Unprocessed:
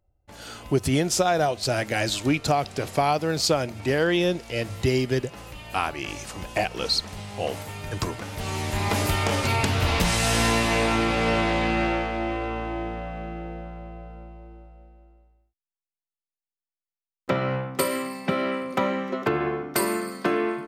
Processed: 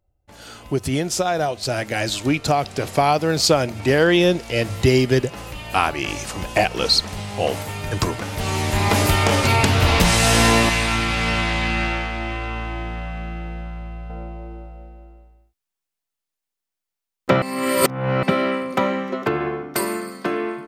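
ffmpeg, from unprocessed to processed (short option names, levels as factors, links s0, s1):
-filter_complex "[0:a]asettb=1/sr,asplit=3[s0][s1][s2];[s0]atrim=end=10.694[s3];[s1]atrim=start=10.69:end=14.1,asetpts=PTS-STARTPTS,afade=t=in:d=0.004:c=qsin,afade=t=out:st=3.406:d=0.004:c=qsin,equalizer=f=450:w=0.64:g=-13[s4];[s2]atrim=start=14.096[s5];[s3][s4]acrossfade=d=0.004:c1=hsin:c2=qsin[s6];[s6][s5]acrossfade=d=0.004:c1=qsin:c2=hsin,asplit=3[s7][s8][s9];[s7]atrim=end=17.422[s10];[s8]atrim=start=17.418:end=18.232,asetpts=PTS-STARTPTS,areverse[s11];[s9]atrim=start=18.228[s12];[s10][s11]acrossfade=d=0.004:c1=hsin:c2=hsin[s13];[s13][s12]acrossfade=d=0.004:c1=hsin:c2=hsin,dynaudnorm=f=610:g=9:m=3.76"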